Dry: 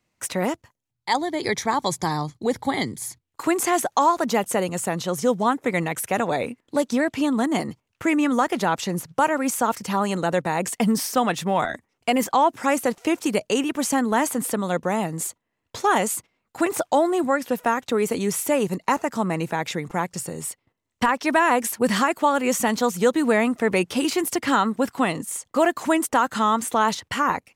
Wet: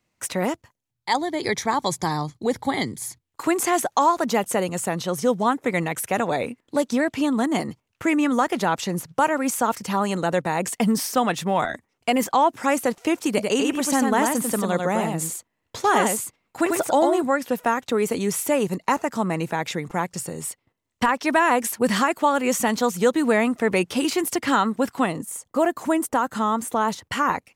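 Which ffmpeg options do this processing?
ffmpeg -i in.wav -filter_complex "[0:a]asettb=1/sr,asplit=3[link_01][link_02][link_03];[link_01]atrim=end=4.944[link_04];[link_02]atrim=start=4.94:end=5.36,asetpts=PTS-STARTPTS,afade=type=in:duration=0.004:curve=qsin,afade=type=out:start_time=0.416:duration=0.004:curve=qsin,bandreject=frequency=7100:width=12[link_05];[link_03]atrim=start=5.356[link_06];[link_04][link_05]acrossfade=duration=0.004:curve1=hsin:curve2=qsin[link_07];[link_07][link_06]acrossfade=duration=0.004:curve1=qsin:curve2=hsin,asettb=1/sr,asplit=3[link_08][link_09][link_10];[link_08]atrim=end=13.284[link_11];[link_09]atrim=start=13.28:end=17.22,asetpts=PTS-STARTPTS,afade=type=in:duration=0.004:curve=qsin,afade=type=out:start_time=3.936:duration=0.004:curve=qsin,aecho=1:1:95:0.631,atrim=end_sample=173754[link_12];[link_10]atrim=start=17.216[link_13];[link_11][link_12]acrossfade=duration=0.004:curve1=hsin:curve2=qsin[link_14];[link_14][link_13]acrossfade=duration=0.004:curve1=qsin:curve2=hsin,asettb=1/sr,asplit=3[link_15][link_16][link_17];[link_15]atrim=end=25.064[link_18];[link_16]atrim=start=25.06:end=27.12,asetpts=PTS-STARTPTS,afade=type=in:duration=0.004:curve=qsin,afade=type=out:start_time=2.056:duration=0.004:curve=qsin,equalizer=frequency=3300:width_type=o:width=2.7:gain=-7[link_19];[link_17]atrim=start=27.116[link_20];[link_18][link_19]acrossfade=duration=0.004:curve1=hsin:curve2=qsin[link_21];[link_21][link_20]acrossfade=duration=0.004:curve1=qsin:curve2=hsin" out.wav

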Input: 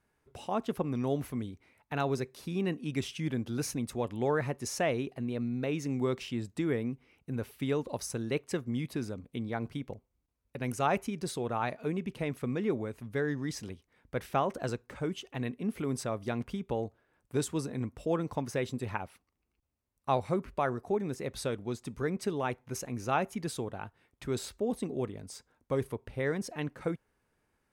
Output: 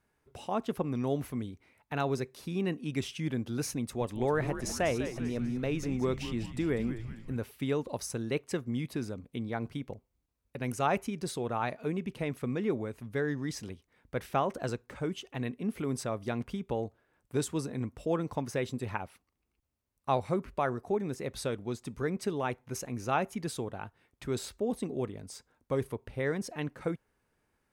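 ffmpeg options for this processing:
ffmpeg -i in.wav -filter_complex "[0:a]asettb=1/sr,asplit=3[link_01][link_02][link_03];[link_01]atrim=end=3.814[link_04];[link_02]atrim=start=3.81:end=7.37,asetpts=PTS-STARTPTS,afade=type=in:duration=0.004:curve=qsin,afade=type=out:start_time=3.556:duration=0.004:curve=qsin,asplit=7[link_05][link_06][link_07][link_08][link_09][link_10][link_11];[link_06]adelay=197,afreqshift=-110,volume=-10dB[link_12];[link_07]adelay=394,afreqshift=-220,volume=-15.2dB[link_13];[link_08]adelay=591,afreqshift=-330,volume=-20.4dB[link_14];[link_09]adelay=788,afreqshift=-440,volume=-25.6dB[link_15];[link_10]adelay=985,afreqshift=-550,volume=-30.8dB[link_16];[link_11]adelay=1182,afreqshift=-660,volume=-36dB[link_17];[link_05][link_12][link_13][link_14][link_15][link_16][link_17]amix=inputs=7:normalize=0,atrim=end_sample=156996[link_18];[link_03]atrim=start=7.366[link_19];[link_04][link_18]acrossfade=duration=0.004:curve1=hsin:curve2=qsin[link_20];[link_20][link_19]acrossfade=duration=0.004:curve1=qsin:curve2=hsin" out.wav

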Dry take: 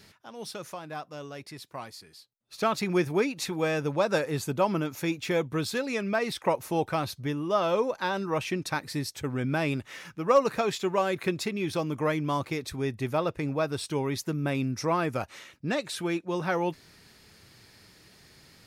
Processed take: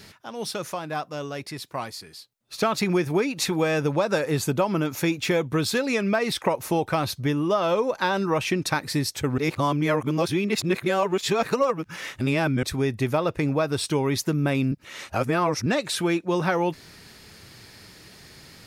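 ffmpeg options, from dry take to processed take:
ffmpeg -i in.wav -filter_complex "[0:a]asplit=5[link_01][link_02][link_03][link_04][link_05];[link_01]atrim=end=9.382[link_06];[link_02]atrim=start=9.378:end=12.632,asetpts=PTS-STARTPTS,areverse[link_07];[link_03]atrim=start=12.628:end=14.722[link_08];[link_04]atrim=start=14.718:end=15.662,asetpts=PTS-STARTPTS,areverse[link_09];[link_05]atrim=start=15.658[link_10];[link_06][link_07]acrossfade=duration=0.004:curve1=hsin:curve2=hsin[link_11];[link_11][link_08]acrossfade=duration=0.004:curve1=hsin:curve2=hsin[link_12];[link_12][link_09]acrossfade=duration=0.004:curve1=hsin:curve2=hsin[link_13];[link_13][link_10]acrossfade=duration=0.004:curve1=hsin:curve2=hsin,acompressor=threshold=-27dB:ratio=6,volume=8dB" out.wav

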